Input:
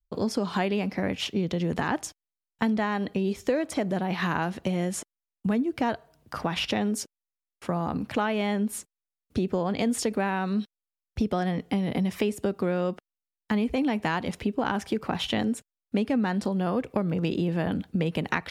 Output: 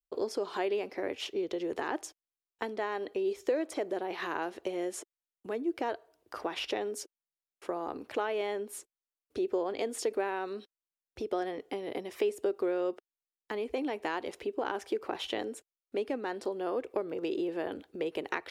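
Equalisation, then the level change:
low shelf with overshoot 260 Hz −12 dB, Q 3
−7.5 dB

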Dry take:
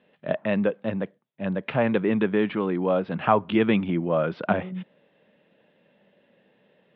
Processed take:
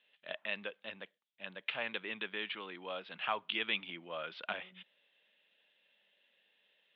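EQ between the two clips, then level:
resonant band-pass 3,400 Hz, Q 2.1
+2.0 dB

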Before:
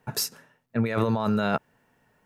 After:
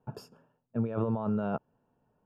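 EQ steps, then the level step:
moving average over 22 samples
−5.0 dB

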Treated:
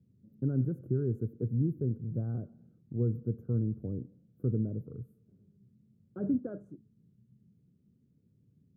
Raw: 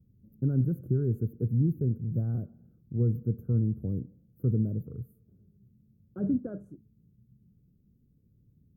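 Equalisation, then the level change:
high-pass filter 120 Hz 12 dB per octave
dynamic equaliser 180 Hz, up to −5 dB, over −45 dBFS, Q 2.1
high-frequency loss of the air 56 metres
0.0 dB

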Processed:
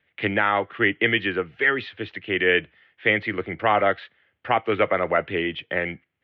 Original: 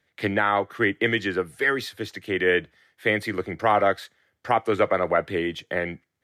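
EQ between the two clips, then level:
low-pass with resonance 2,800 Hz, resonance Q 3.4
high-frequency loss of the air 200 metres
0.0 dB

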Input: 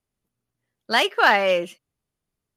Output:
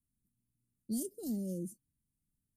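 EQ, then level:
elliptic band-stop filter 260–8,300 Hz, stop band 60 dB
0.0 dB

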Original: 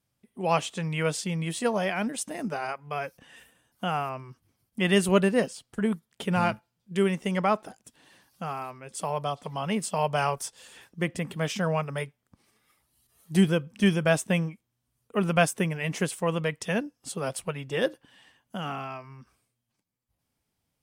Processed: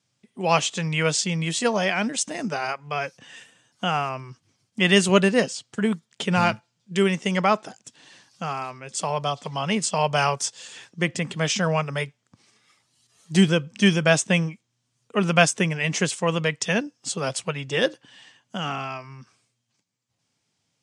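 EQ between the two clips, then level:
elliptic band-pass filter 110–7,100 Hz, stop band 50 dB
low-shelf EQ 360 Hz +3 dB
high-shelf EQ 2,200 Hz +11.5 dB
+2.0 dB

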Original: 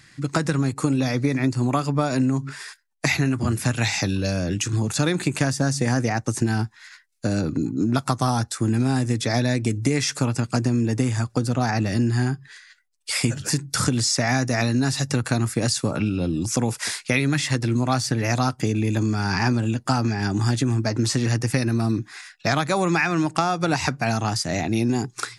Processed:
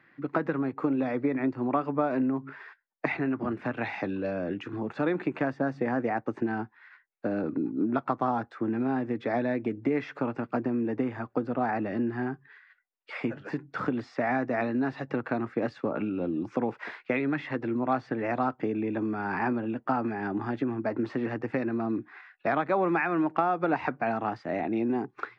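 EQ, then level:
three-way crossover with the lows and the highs turned down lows −23 dB, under 240 Hz, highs −23 dB, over 2,900 Hz
head-to-tape spacing loss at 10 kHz 33 dB
0.0 dB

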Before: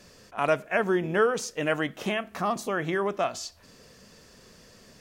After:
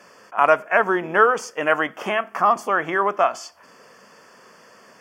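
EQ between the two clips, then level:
high-pass filter 190 Hz 12 dB per octave
Butterworth band-reject 3,900 Hz, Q 3.9
parametric band 1,100 Hz +14.5 dB 2 octaves
−1.5 dB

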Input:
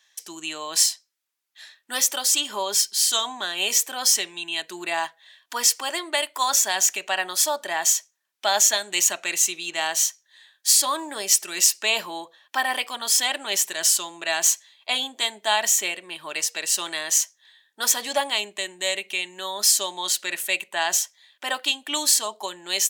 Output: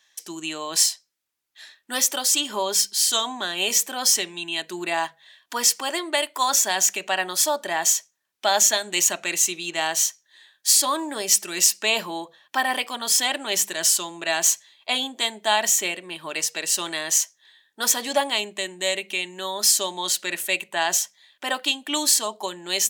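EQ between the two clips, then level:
low-shelf EQ 320 Hz +11 dB
mains-hum notches 50/100/150/200 Hz
0.0 dB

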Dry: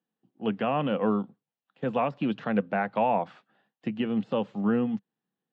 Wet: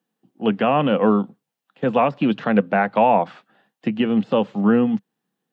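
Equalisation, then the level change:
high-pass filter 120 Hz
+9.0 dB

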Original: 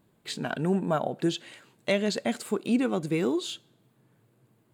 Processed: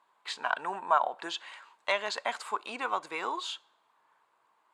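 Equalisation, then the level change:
high-pass with resonance 990 Hz, resonance Q 4.3
high-frequency loss of the air 64 metres
0.0 dB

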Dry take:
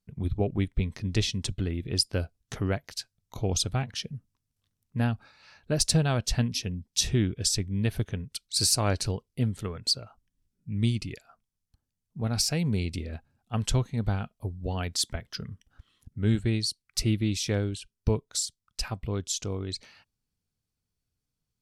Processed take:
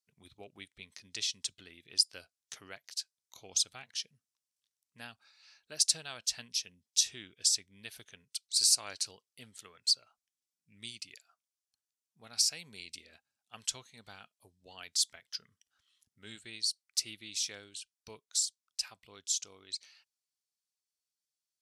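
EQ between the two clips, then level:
resonant band-pass 6,700 Hz, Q 0.79
0.0 dB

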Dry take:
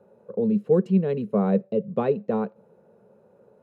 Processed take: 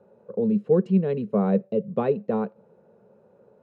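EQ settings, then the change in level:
high-frequency loss of the air 61 metres
0.0 dB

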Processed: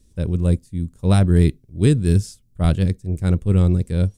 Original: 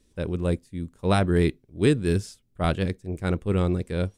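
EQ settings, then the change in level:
bass and treble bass +14 dB, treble +10 dB
parametric band 550 Hz +2.5 dB 0.77 octaves
−3.5 dB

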